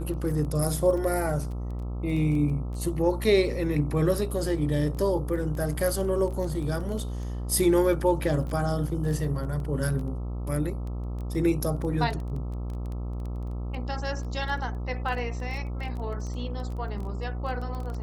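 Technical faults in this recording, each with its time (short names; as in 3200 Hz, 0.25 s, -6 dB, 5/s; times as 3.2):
buzz 60 Hz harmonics 22 -32 dBFS
crackle 14/s -33 dBFS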